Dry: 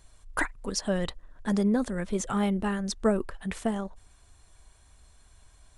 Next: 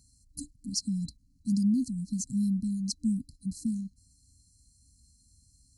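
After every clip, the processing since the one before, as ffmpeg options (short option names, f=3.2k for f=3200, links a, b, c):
-af "afftfilt=real='re*(1-between(b*sr/4096,300,4000))':imag='im*(1-between(b*sr/4096,300,4000))':win_size=4096:overlap=0.75,highpass=70"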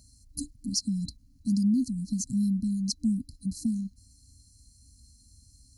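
-filter_complex "[0:a]equalizer=f=160:t=o:w=0.33:g=-7,equalizer=f=630:t=o:w=0.33:g=9,equalizer=f=8k:t=o:w=0.33:g=-6,asplit=2[a][b];[b]acompressor=threshold=-37dB:ratio=6,volume=1.5dB[c];[a][c]amix=inputs=2:normalize=0"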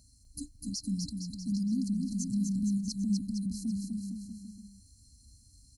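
-af "alimiter=limit=-23.5dB:level=0:latency=1:release=32,aecho=1:1:250|462.5|643.1|796.7|927.2:0.631|0.398|0.251|0.158|0.1,volume=-4dB"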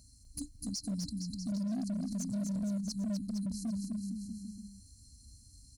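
-filter_complex "[0:a]asplit=2[a][b];[b]acompressor=threshold=-39dB:ratio=12,volume=2.5dB[c];[a][c]amix=inputs=2:normalize=0,volume=26dB,asoftclip=hard,volume=-26dB,volume=-5.5dB"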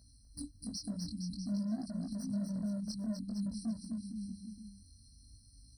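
-af "flanger=delay=17.5:depth=6.4:speed=0.52,afftfilt=real='re*eq(mod(floor(b*sr/1024/2000),2),0)':imag='im*eq(mod(floor(b*sr/1024/2000),2),0)':win_size=1024:overlap=0.75,volume=1dB"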